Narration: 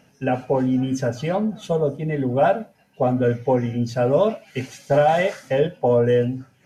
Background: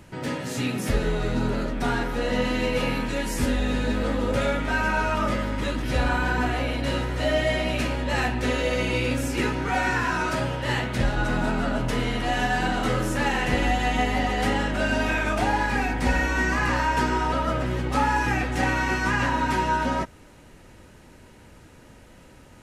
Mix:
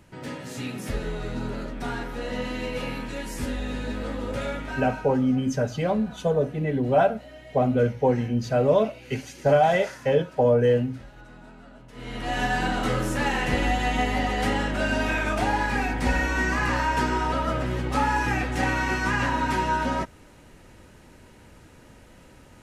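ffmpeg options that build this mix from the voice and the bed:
ffmpeg -i stem1.wav -i stem2.wav -filter_complex "[0:a]adelay=4550,volume=-2dB[link_01];[1:a]volume=15.5dB,afade=type=out:start_time=4.55:duration=0.62:silence=0.149624,afade=type=in:start_time=11.93:duration=0.51:silence=0.0841395[link_02];[link_01][link_02]amix=inputs=2:normalize=0" out.wav

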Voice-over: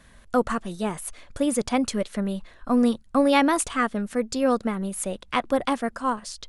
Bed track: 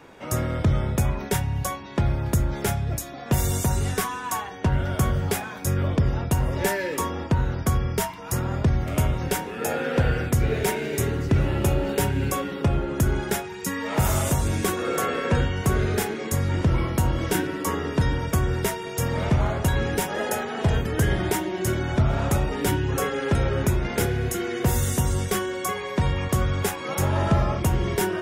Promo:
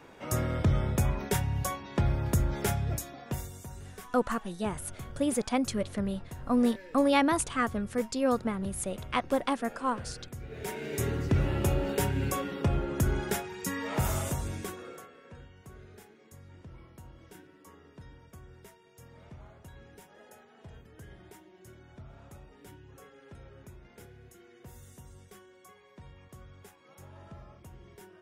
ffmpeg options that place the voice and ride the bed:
ffmpeg -i stem1.wav -i stem2.wav -filter_complex "[0:a]adelay=3800,volume=-5dB[link_01];[1:a]volume=11dB,afade=type=out:start_time=2.92:duration=0.58:silence=0.149624,afade=type=in:start_time=10.49:duration=0.6:silence=0.16788,afade=type=out:start_time=13.77:duration=1.32:silence=0.0749894[link_02];[link_01][link_02]amix=inputs=2:normalize=0" out.wav

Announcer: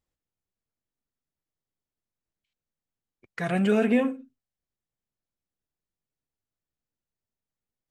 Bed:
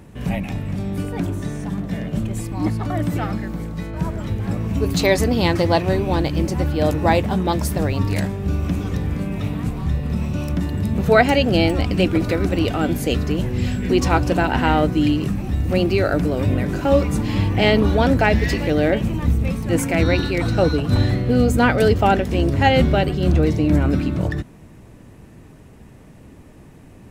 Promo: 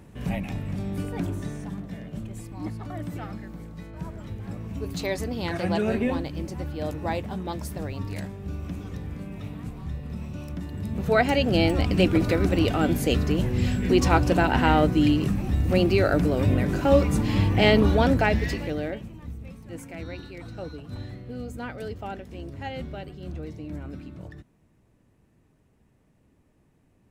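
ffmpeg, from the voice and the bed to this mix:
ffmpeg -i stem1.wav -i stem2.wav -filter_complex "[0:a]adelay=2100,volume=-4dB[link_01];[1:a]volume=4dB,afade=type=out:start_time=1.34:duration=0.63:silence=0.473151,afade=type=in:start_time=10.67:duration=1.33:silence=0.334965,afade=type=out:start_time=17.84:duration=1.25:silence=0.141254[link_02];[link_01][link_02]amix=inputs=2:normalize=0" out.wav

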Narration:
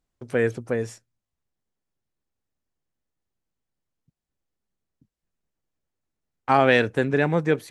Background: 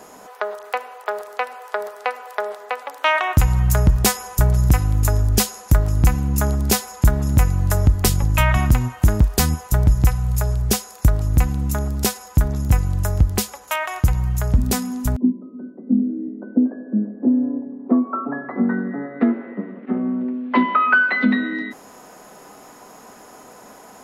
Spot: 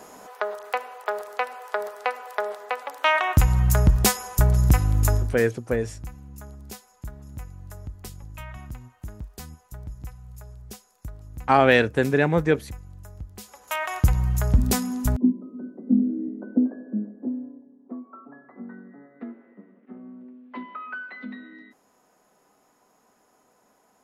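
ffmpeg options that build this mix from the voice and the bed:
ffmpeg -i stem1.wav -i stem2.wav -filter_complex "[0:a]adelay=5000,volume=1dB[link_01];[1:a]volume=18dB,afade=type=out:start_time=5.13:duration=0.24:silence=0.1,afade=type=in:start_time=13.38:duration=0.54:silence=0.0944061,afade=type=out:start_time=16.31:duration=1.24:silence=0.125893[link_02];[link_01][link_02]amix=inputs=2:normalize=0" out.wav

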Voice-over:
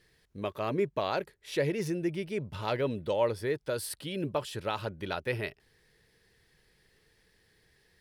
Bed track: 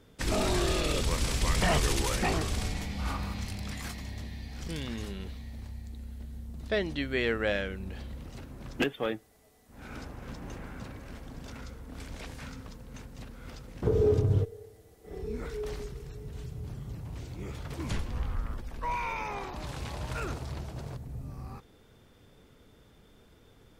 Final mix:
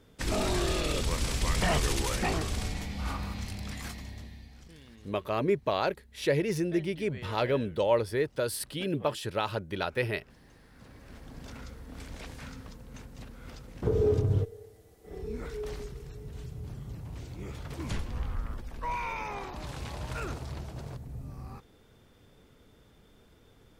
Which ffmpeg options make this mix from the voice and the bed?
ffmpeg -i stem1.wav -i stem2.wav -filter_complex "[0:a]adelay=4700,volume=2.5dB[link_01];[1:a]volume=14.5dB,afade=type=out:start_time=3.88:duration=0.84:silence=0.16788,afade=type=in:start_time=10.7:duration=0.75:silence=0.16788[link_02];[link_01][link_02]amix=inputs=2:normalize=0" out.wav

